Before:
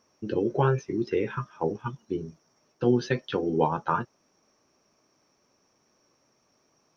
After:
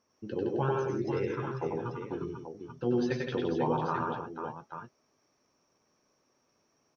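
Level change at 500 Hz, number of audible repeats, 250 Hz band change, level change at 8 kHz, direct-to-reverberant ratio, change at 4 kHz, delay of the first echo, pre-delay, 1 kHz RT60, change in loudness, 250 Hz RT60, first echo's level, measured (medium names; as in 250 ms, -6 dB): -4.0 dB, 5, -3.5 dB, no reading, no reverb, -4.5 dB, 95 ms, no reverb, no reverb, -4.5 dB, no reverb, -3.0 dB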